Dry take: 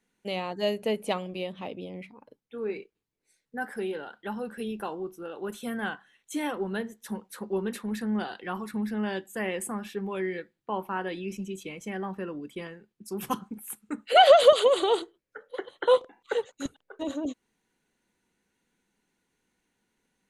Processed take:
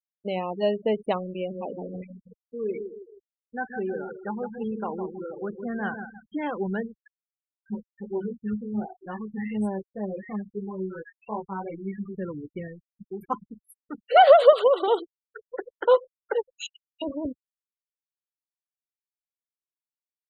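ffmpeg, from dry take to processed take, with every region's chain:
ffmpeg -i in.wav -filter_complex "[0:a]asettb=1/sr,asplit=3[link_01][link_02][link_03];[link_01]atrim=end=1.334[link_04];[link_02]atrim=start=1.33:end=6.5,asetpts=PTS-STARTPTS,afade=type=in:duration=0.004:curve=qsin,afade=type=out:start_time=5.166:duration=0.004:curve=qsin,equalizer=frequency=7900:width_type=o:width=0.57:gain=-10.5,asplit=2[link_05][link_06];[link_06]adelay=158,lowpass=frequency=3300:poles=1,volume=-7dB,asplit=2[link_07][link_08];[link_08]adelay=158,lowpass=frequency=3300:poles=1,volume=0.45,asplit=2[link_09][link_10];[link_10]adelay=158,lowpass=frequency=3300:poles=1,volume=0.45,asplit=2[link_11][link_12];[link_12]adelay=158,lowpass=frequency=3300:poles=1,volume=0.45,asplit=2[link_13][link_14];[link_14]adelay=158,lowpass=frequency=3300:poles=1,volume=0.45[link_15];[link_05][link_07][link_09][link_11][link_13][link_15]amix=inputs=6:normalize=0,atrim=end_sample=227997[link_16];[link_03]atrim=start=6.496[link_17];[link_04][link_16]acrossfade=duration=0.004:curve1=hsin:curve2=qsin[link_18];[link_18][link_17]acrossfade=duration=0.004:curve1=qsin:curve2=hsin,asettb=1/sr,asplit=3[link_19][link_20][link_21];[link_19]atrim=end=7.094[link_22];[link_20]atrim=start=7.09:end=12.15,asetpts=PTS-STARTPTS,afade=type=in:duration=0.004:curve=qsin,afade=type=out:start_time=5.056:duration=0.004:curve=qsin,acrossover=split=1500[link_23][link_24];[link_23]adelay=600[link_25];[link_25][link_24]amix=inputs=2:normalize=0,atrim=end_sample=223146,flanger=delay=18.5:depth=2.3:speed=2.8[link_26];[link_21]atrim=start=12.146[link_27];[link_22][link_26]acrossfade=duration=0.004:curve1=hsin:curve2=qsin[link_28];[link_28][link_27]acrossfade=duration=0.004:curve1=qsin:curve2=hsin,asettb=1/sr,asplit=3[link_29][link_30][link_31];[link_29]atrim=end=13.104[link_32];[link_30]atrim=start=13.1:end=14.88,asetpts=PTS-STARTPTS,afade=type=in:duration=0.004:curve=qsin,afade=type=out:start_time=1.776:duration=0.004:curve=qsin,highpass=310,equalizer=frequency=3300:width_type=o:width=0.47:gain=-4[link_33];[link_31]atrim=start=14.876[link_34];[link_32][link_33]acrossfade=duration=0.004:curve1=hsin:curve2=qsin[link_35];[link_35][link_34]acrossfade=duration=0.004:curve1=qsin:curve2=hsin,asettb=1/sr,asplit=3[link_36][link_37][link_38];[link_36]atrim=end=16.534[link_39];[link_37]atrim=start=16.53:end=17.02,asetpts=PTS-STARTPTS,afade=type=in:duration=0.004:curve=qsin,afade=type=out:start_time=0.486:duration=0.004:curve=qsin,highpass=frequency=2700:width_type=q:width=8.4,equalizer=frequency=9400:width=0.41:gain=13[link_40];[link_38]atrim=start=17.016[link_41];[link_39][link_40]acrossfade=duration=0.004:curve1=hsin:curve2=qsin[link_42];[link_42][link_41]acrossfade=duration=0.004:curve1=qsin:curve2=hsin,afftfilt=real='re*gte(hypot(re,im),0.0282)':imag='im*gte(hypot(re,im),0.0282)':win_size=1024:overlap=0.75,asubboost=boost=8:cutoff=93,lowpass=frequency=1300:poles=1,volume=5dB" out.wav

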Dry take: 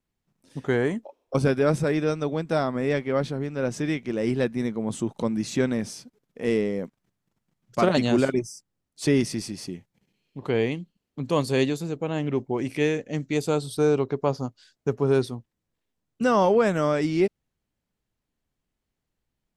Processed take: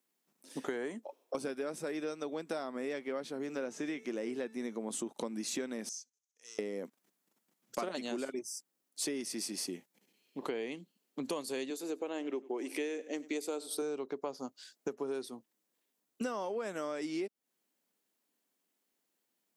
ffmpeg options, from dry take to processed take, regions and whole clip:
ffmpeg -i in.wav -filter_complex "[0:a]asettb=1/sr,asplit=3[link_01][link_02][link_03];[link_01]atrim=end=3.394[link_04];[link_02]atrim=start=3.39:end=4.78,asetpts=PTS-STARTPTS,afade=type=in:duration=0.004:curve=qsin,afade=type=out:start_time=1.386:duration=0.004:curve=qsin,bandreject=frequency=440:width_type=h:width=4,bandreject=frequency=880:width_type=h:width=4,bandreject=frequency=1320:width_type=h:width=4,bandreject=frequency=1760:width_type=h:width=4,bandreject=frequency=2200:width_type=h:width=4,bandreject=frequency=2640:width_type=h:width=4,bandreject=frequency=3080:width_type=h:width=4,bandreject=frequency=3520:width_type=h:width=4,bandreject=frequency=3960:width_type=h:width=4,bandreject=frequency=4400:width_type=h:width=4,bandreject=frequency=4840:width_type=h:width=4,bandreject=frequency=5280:width_type=h:width=4,bandreject=frequency=5720:width_type=h:width=4,bandreject=frequency=6160:width_type=h:width=4,bandreject=frequency=6600:width_type=h:width=4,bandreject=frequency=7040:width_type=h:width=4,bandreject=frequency=7480:width_type=h:width=4,bandreject=frequency=7920:width_type=h:width=4,bandreject=frequency=8360:width_type=h:width=4,bandreject=frequency=8800:width_type=h:width=4,bandreject=frequency=9240:width_type=h:width=4,bandreject=frequency=9680:width_type=h:width=4,bandreject=frequency=10120:width_type=h:width=4,bandreject=frequency=10560:width_type=h:width=4,bandreject=frequency=11000:width_type=h:width=4,bandreject=frequency=11440:width_type=h:width=4,bandreject=frequency=11880:width_type=h:width=4,bandreject=frequency=12320:width_type=h:width=4,bandreject=frequency=12760:width_type=h:width=4,bandreject=frequency=13200:width_type=h:width=4,bandreject=frequency=13640:width_type=h:width=4,bandreject=frequency=14080:width_type=h:width=4,bandreject=frequency=14520:width_type=h:width=4,bandreject=frequency=14960:width_type=h:width=4,bandreject=frequency=15400:width_type=h:width=4,bandreject=frequency=15840:width_type=h:width=4,bandreject=frequency=16280:width_type=h:width=4,bandreject=frequency=16720:width_type=h:width=4,bandreject=frequency=17160:width_type=h:width=4,acrossover=split=3400[link_05][link_06];[link_06]acompressor=threshold=-51dB:ratio=4:attack=1:release=60[link_07];[link_05][link_07]amix=inputs=2:normalize=0,equalizer=frequency=6600:width_type=o:width=0.3:gain=7.5[link_08];[link_03]atrim=start=4.776[link_09];[link_04][link_08]acrossfade=duration=0.004:curve1=hsin:curve2=qsin[link_10];[link_10][link_09]acrossfade=duration=0.004:curve1=qsin:curve2=hsin,asettb=1/sr,asplit=3[link_11][link_12][link_13];[link_11]atrim=end=5.894[link_14];[link_12]atrim=start=5.89:end=6.59,asetpts=PTS-STARTPTS,afade=type=in:duration=0.004:curve=qsin,afade=type=out:start_time=0.696:duration=0.004:curve=qsin,asoftclip=type=hard:threshold=-17.5dB,bandpass=frequency=6300:width_type=q:width=6.4[link_15];[link_13]atrim=start=6.586[link_16];[link_14][link_15]acrossfade=duration=0.004:curve1=hsin:curve2=qsin[link_17];[link_17][link_16]acrossfade=duration=0.004:curve1=qsin:curve2=hsin,asettb=1/sr,asplit=3[link_18][link_19][link_20];[link_18]atrim=end=11.704[link_21];[link_19]atrim=start=11.7:end=13.82,asetpts=PTS-STARTPTS,afade=type=in:duration=0.004:curve=qsin,afade=type=out:start_time=2.116:duration=0.004:curve=qsin,lowshelf=frequency=220:width_type=q:width=1.5:gain=-11.5,aecho=1:1:94|188|282:0.0794|0.0286|0.0103,atrim=end_sample=93492[link_22];[link_20]atrim=start=13.816[link_23];[link_21][link_22]acrossfade=duration=0.004:curve1=hsin:curve2=qsin[link_24];[link_24][link_23]acrossfade=duration=0.004:curve1=qsin:curve2=hsin,highpass=frequency=240:width=0.5412,highpass=frequency=240:width=1.3066,highshelf=frequency=7100:gain=12,acompressor=threshold=-34dB:ratio=12" out.wav

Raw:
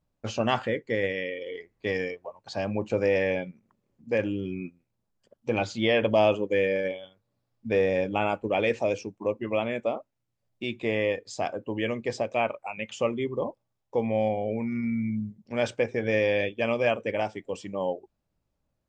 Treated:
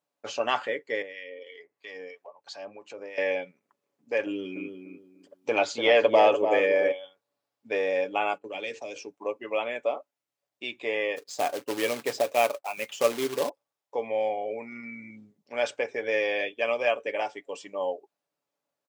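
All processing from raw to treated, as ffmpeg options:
ffmpeg -i in.wav -filter_complex "[0:a]asettb=1/sr,asplit=3[link_01][link_02][link_03];[link_01]atrim=end=1.024[link_04];[link_02]atrim=start=1.02:end=3.18,asetpts=PTS-STARTPTS,afade=type=in:duration=0.004:curve=qsin,afade=type=out:start_time=2.156:duration=0.004:curve=qsin,acompressor=threshold=-37dB:ratio=2:attack=3.2:release=140:knee=1:detection=peak,acrossover=split=1200[link_05][link_06];[link_05]aeval=exprs='val(0)*(1-0.7/2+0.7/2*cos(2*PI*3*n/s))':channel_layout=same[link_07];[link_06]aeval=exprs='val(0)*(1-0.7/2-0.7/2*cos(2*PI*3*n/s))':channel_layout=same[link_08];[link_07][link_08]amix=inputs=2:normalize=0[link_09];[link_03]atrim=start=3.176[link_10];[link_04][link_09]acrossfade=duration=0.004:curve1=hsin:curve2=qsin[link_11];[link_11][link_10]acrossfade=duration=0.004:curve1=qsin:curve2=hsin,asettb=1/sr,asplit=3[link_12][link_13][link_14];[link_12]atrim=end=4.264[link_15];[link_13]atrim=start=4.26:end=6.92,asetpts=PTS-STARTPTS,afade=type=in:duration=0.004:curve=qsin,afade=type=out:start_time=2.656:duration=0.004:curve=qsin,adynamicequalizer=threshold=0.00708:dfrequency=3200:dqfactor=0.8:tfrequency=3200:tqfactor=0.8:attack=5:release=100:ratio=0.375:range=3:mode=cutabove:tftype=bell,acontrast=27,asplit=2[link_16][link_17];[link_17]adelay=294,lowpass=frequency=1100:poles=1,volume=-6dB,asplit=2[link_18][link_19];[link_19]adelay=294,lowpass=frequency=1100:poles=1,volume=0.26,asplit=2[link_20][link_21];[link_21]adelay=294,lowpass=frequency=1100:poles=1,volume=0.26[link_22];[link_16][link_18][link_20][link_22]amix=inputs=4:normalize=0,atrim=end_sample=117306[link_23];[link_14]atrim=start=6.916[link_24];[link_15][link_23]acrossfade=duration=0.004:curve1=hsin:curve2=qsin[link_25];[link_25][link_24]acrossfade=duration=0.004:curve1=qsin:curve2=hsin,asettb=1/sr,asplit=3[link_26][link_27][link_28];[link_26]atrim=end=8.334[link_29];[link_27]atrim=start=8.33:end=8.96,asetpts=PTS-STARTPTS,afade=type=in:duration=0.004:curve=qsin,afade=type=out:start_time=0.626:duration=0.004:curve=qsin,bandreject=frequency=50:width_type=h:width=6,bandreject=frequency=100:width_type=h:width=6,bandreject=frequency=150:width_type=h:width=6,bandreject=frequency=200:width_type=h:width=6,bandreject=frequency=250:width_type=h:width=6,bandreject=frequency=300:width_type=h:width=6,bandreject=frequency=350:width_type=h:width=6,bandreject=frequency=400:width_type=h:width=6,bandreject=frequency=450:width_type=h:width=6,acrossover=split=290|3000[link_30][link_31][link_32];[link_31]acompressor=threshold=-41dB:ratio=2.5:attack=3.2:release=140:knee=2.83:detection=peak[link_33];[link_30][link_33][link_32]amix=inputs=3:normalize=0,agate=range=-13dB:threshold=-44dB:ratio=16:release=100:detection=peak[link_34];[link_28]atrim=start=8.956[link_35];[link_29][link_34]acrossfade=duration=0.004:curve1=hsin:curve2=qsin[link_36];[link_36][link_35]acrossfade=duration=0.004:curve1=qsin:curve2=hsin,asettb=1/sr,asplit=3[link_37][link_38][link_39];[link_37]atrim=end=11.164[link_40];[link_38]atrim=start=11.16:end=13.49,asetpts=PTS-STARTPTS,afade=type=in:duration=0.004:curve=qsin,afade=type=out:start_time=2.326:duration=0.004:curve=qsin,agate=range=-33dB:threshold=-46dB:ratio=3:release=100:detection=peak,lowshelf=frequency=390:gain=10,acrusher=bits=3:mode=log:mix=0:aa=0.000001[link_41];[link_39]atrim=start=13.486[link_42];[link_40][link_41]acrossfade=duration=0.004:curve1=hsin:curve2=qsin[link_43];[link_43][link_42]acrossfade=duration=0.004:curve1=qsin:curve2=hsin,highpass=470,aecho=1:1:7:0.41" out.wav

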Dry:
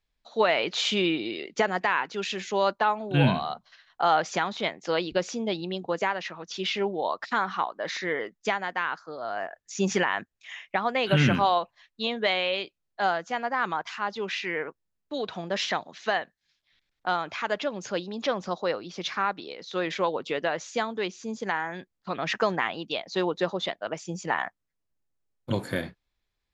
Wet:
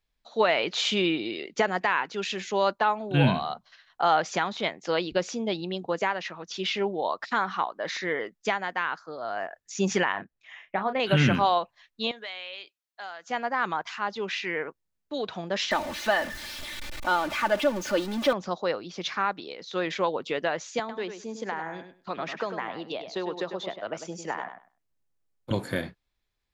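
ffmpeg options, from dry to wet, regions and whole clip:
ffmpeg -i in.wav -filter_complex "[0:a]asettb=1/sr,asplit=3[link_01][link_02][link_03];[link_01]atrim=end=10.124[link_04];[link_02]atrim=start=10.12:end=11,asetpts=PTS-STARTPTS,afade=type=in:duration=0.004:curve=qsin,afade=type=out:start_time=0.876:duration=0.004:curve=qsin,lowpass=frequency=1300:poles=1,asplit=2[link_05][link_06];[link_06]adelay=31,volume=-9dB[link_07];[link_05][link_07]amix=inputs=2:normalize=0,atrim=end_sample=38808[link_08];[link_03]atrim=start=10.996[link_09];[link_04][link_08]acrossfade=duration=0.004:curve1=hsin:curve2=qsin[link_10];[link_10][link_09]acrossfade=duration=0.004:curve1=qsin:curve2=hsin,asettb=1/sr,asplit=3[link_11][link_12][link_13];[link_11]atrim=end=12.114[link_14];[link_12]atrim=start=12.11:end=13.29,asetpts=PTS-STARTPTS,afade=type=in:duration=0.004:curve=qsin,afade=type=out:start_time=1.176:duration=0.004:curve=qsin,highpass=frequency=1500:poles=1,acompressor=threshold=-41dB:ratio=2:attack=3.2:release=140:knee=1:detection=peak[link_15];[link_13]atrim=start=13.286[link_16];[link_14][link_15]acrossfade=duration=0.004:curve1=hsin:curve2=qsin[link_17];[link_17][link_16]acrossfade=duration=0.004:curve1=qsin:curve2=hsin,asettb=1/sr,asplit=3[link_18][link_19][link_20];[link_18]atrim=end=15.714[link_21];[link_19]atrim=start=15.71:end=18.33,asetpts=PTS-STARTPTS,afade=type=in:duration=0.004:curve=qsin,afade=type=out:start_time=2.616:duration=0.004:curve=qsin,aeval=exprs='val(0)+0.5*0.0266*sgn(val(0))':channel_layout=same,highshelf=frequency=4400:gain=-6,aecho=1:1:3.4:0.68,atrim=end_sample=115542[link_22];[link_20]atrim=start=18.326[link_23];[link_21][link_22]acrossfade=duration=0.004:curve1=hsin:curve2=qsin[link_24];[link_24][link_23]acrossfade=duration=0.004:curve1=qsin:curve2=hsin,asettb=1/sr,asplit=3[link_25][link_26][link_27];[link_25]atrim=end=20.794[link_28];[link_26]atrim=start=20.79:end=25.51,asetpts=PTS-STARTPTS,afade=type=in:duration=0.004:curve=qsin,afade=type=out:start_time=4.716:duration=0.004:curve=qsin,acrossover=split=260|1200[link_29][link_30][link_31];[link_29]acompressor=threshold=-47dB:ratio=4[link_32];[link_30]acompressor=threshold=-30dB:ratio=4[link_33];[link_31]acompressor=threshold=-39dB:ratio=4[link_34];[link_32][link_33][link_34]amix=inputs=3:normalize=0,asplit=2[link_35][link_36];[link_36]adelay=100,lowpass=frequency=4200:poles=1,volume=-8.5dB,asplit=2[link_37][link_38];[link_38]adelay=100,lowpass=frequency=4200:poles=1,volume=0.18,asplit=2[link_39][link_40];[link_40]adelay=100,lowpass=frequency=4200:poles=1,volume=0.18[link_41];[link_35][link_37][link_39][link_41]amix=inputs=4:normalize=0,atrim=end_sample=208152[link_42];[link_27]atrim=start=25.506[link_43];[link_28][link_42]acrossfade=duration=0.004:curve1=hsin:curve2=qsin[link_44];[link_44][link_43]acrossfade=duration=0.004:curve1=qsin:curve2=hsin" out.wav

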